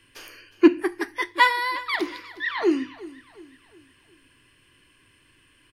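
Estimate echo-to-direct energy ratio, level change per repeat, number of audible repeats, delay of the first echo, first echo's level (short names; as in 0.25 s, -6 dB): -17.5 dB, -7.0 dB, 3, 0.361 s, -18.5 dB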